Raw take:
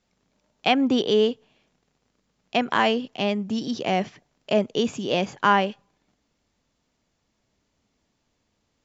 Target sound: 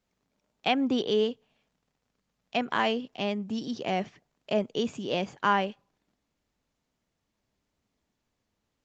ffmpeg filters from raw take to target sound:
-filter_complex "[0:a]asplit=3[a][b][c];[a]afade=t=out:st=1.23:d=0.02[d];[b]equalizer=f=350:t=o:w=0.24:g=-13,afade=t=in:st=1.23:d=0.02,afade=t=out:st=2.56:d=0.02[e];[c]afade=t=in:st=2.56:d=0.02[f];[d][e][f]amix=inputs=3:normalize=0,volume=-5.5dB" -ar 48000 -c:a libopus -b:a 32k

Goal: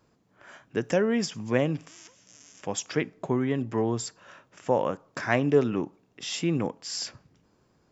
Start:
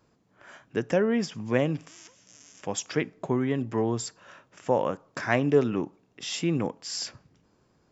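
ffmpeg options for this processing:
-filter_complex "[0:a]asettb=1/sr,asplit=3[a][b][c];[a]atrim=end=0.834[d];[b]atrim=start=0.83:end=1.5,asetpts=PTS-STARTPTS,afade=t=in:d=0.004:c=qsin,afade=t=out:st=0.666:d=0.004:c=qsin,aemphasis=mode=production:type=cd[e];[c]atrim=start=1.496[f];[d][e]acrossfade=d=0.004:c1=hsin:c2=qsin[g];[g][f]acrossfade=d=0.004:c1=qsin:c2=hsin"

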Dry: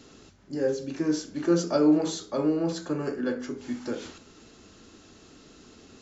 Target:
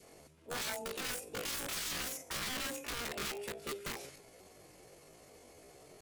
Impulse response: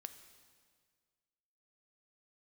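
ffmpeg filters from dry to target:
-filter_complex "[0:a]asplit=2[a][b];[1:a]atrim=start_sample=2205[c];[b][c]afir=irnorm=-1:irlink=0,volume=-9dB[d];[a][d]amix=inputs=2:normalize=0,aeval=exprs='(mod(18.8*val(0)+1,2)-1)/18.8':c=same,asetrate=72056,aresample=44100,atempo=0.612027,adynamicequalizer=threshold=0.00316:dfrequency=790:dqfactor=1.6:tfrequency=790:tqfactor=1.6:attack=5:release=100:ratio=0.375:range=3.5:mode=cutabove:tftype=bell,volume=-7dB"

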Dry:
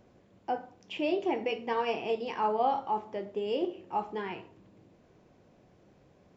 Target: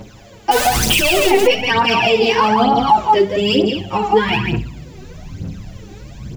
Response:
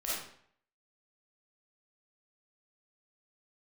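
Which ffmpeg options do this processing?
-filter_complex "[0:a]asettb=1/sr,asplit=3[a][b][c];[a]atrim=end=0.514[d];[b]atrim=start=0.51:end=1.3,asetpts=PTS-STARTPTS,afade=t=in:d=0.004:c=qsin,afade=t=out:st=0.786:d=0.004:c=qsin,aeval=exprs='val(0)+0.5*0.0188*sgn(val(0))':c=same[e];[c]atrim=start=1.296[f];[d][e]acrossfade=d=0.004:c1=hsin:c2=qsin[g];[g][f]acrossfade=d=0.004:c1=qsin:c2=hsin,asplit=2[h][i];[1:a]atrim=start_sample=2205[j];[i][j]afir=irnorm=-1:irlink=0,volume=-22dB[k];[h][k]amix=inputs=2:normalize=0,asubboost=boost=6:cutoff=210,asettb=1/sr,asplit=3[l][m][n];[l]atrim=end=3.554[o];[m]atrim=start=3.55:end=4.28,asetpts=PTS-STARTPTS,afade=t=in:d=0.004:c=qsin,afade=t=out:st=0.726:d=0.004:c=qsin,acompressor=threshold=-31dB:ratio=6[p];[n]atrim=start=4.276[q];[o][p]acrossfade=d=0.004:c1=hsin:c2=qsin[r];[r][q]acrossfade=d=0.004:c1=qsin:c2=hsin,highshelf=f=2.2k:g=11,aecho=1:1:167:0.473,aphaser=in_gain=1:out_gain=1:delay=2.7:decay=0.71:speed=1.1:type=triangular,alimiter=level_in=20.5dB:limit=-1dB:release=50:level=0:latency=1,asplit=2[s][t];[t]adelay=7.1,afreqshift=0.52[u];[s][u]amix=inputs=2:normalize=1,volume=-1dB"

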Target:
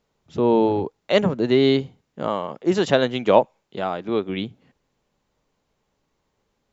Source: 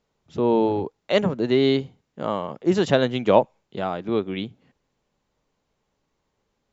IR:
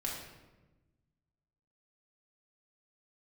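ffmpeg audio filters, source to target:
-filter_complex "[0:a]asettb=1/sr,asplit=3[a][b][c];[a]atrim=end=2.284[d];[b]atrim=start=2.28:end=4.29,asetpts=PTS-STARTPTS,afade=t=in:d=0.004:c=qsin,afade=t=out:st=2.006:d=0.004:c=qsin,lowshelf=f=190:g=-7[e];[c]atrim=start=4.286[f];[d][e]acrossfade=d=0.004:c1=hsin:c2=qsin[g];[g][f]acrossfade=d=0.004:c1=qsin:c2=hsin,volume=2dB"

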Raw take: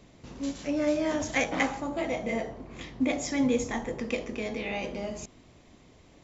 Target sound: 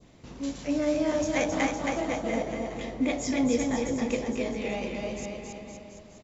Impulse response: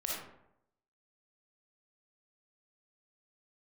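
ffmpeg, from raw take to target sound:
-filter_complex "[0:a]adynamicequalizer=threshold=0.00447:dfrequency=2100:dqfactor=0.84:tfrequency=2100:tqfactor=0.84:attack=5:release=100:ratio=0.375:range=2.5:mode=cutabove:tftype=bell,asplit=2[a][b];[b]aecho=0:1:270|513|731.7|928.5|1106:0.631|0.398|0.251|0.158|0.1[c];[a][c]amix=inputs=2:normalize=0"

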